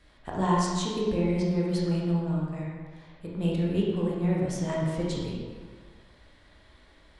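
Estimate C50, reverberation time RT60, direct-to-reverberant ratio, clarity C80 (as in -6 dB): -1.5 dB, 1.7 s, -5.0 dB, 1.0 dB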